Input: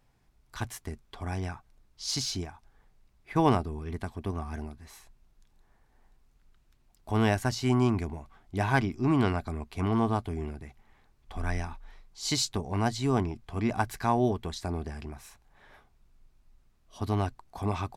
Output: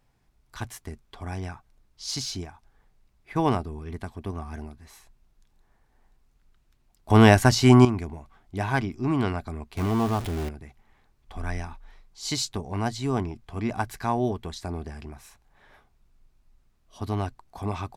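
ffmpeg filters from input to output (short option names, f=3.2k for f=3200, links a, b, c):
-filter_complex "[0:a]asettb=1/sr,asplit=3[a][b][c];[a]atrim=end=9.774[d];[b]atrim=start=9.77:end=10.49,asetpts=PTS-STARTPTS,afade=t=in:d=0.004:c=qsin,afade=t=out:st=0.716:d=0.004:c=qsin,aeval=exprs='val(0)+0.5*0.0355*sgn(val(0))':c=same[e];[c]atrim=start=10.486[f];[d][e]acrossfade=d=0.004:c1=hsin:c2=qsin[g];[g][f]acrossfade=d=0.004:c1=qsin:c2=hsin,asplit=3[h][i][j];[h]atrim=end=7.102[k];[i]atrim=start=7.098:end=7.852,asetpts=PTS-STARTPTS,volume=10.5dB[l];[j]atrim=start=7.848[m];[k][l]acrossfade=d=0.004:c1=hsin:c2=hsin[n];[n][m]acrossfade=d=0.004:c1=hsin:c2=hsin"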